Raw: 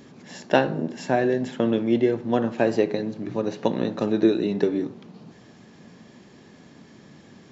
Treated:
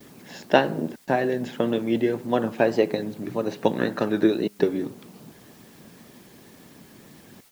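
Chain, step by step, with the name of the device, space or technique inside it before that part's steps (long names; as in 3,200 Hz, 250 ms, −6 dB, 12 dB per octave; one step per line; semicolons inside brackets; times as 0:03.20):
worn cassette (low-pass filter 6,200 Hz; tape wow and flutter; tape dropouts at 0:00.96/0:04.48/0:07.41, 113 ms −27 dB; white noise bed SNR 31 dB)
noise gate with hold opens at −40 dBFS
0:03.78–0:04.26: parametric band 1,600 Hz +14.5 dB → +5 dB 0.55 octaves
harmonic and percussive parts rebalanced harmonic −6 dB
level +2.5 dB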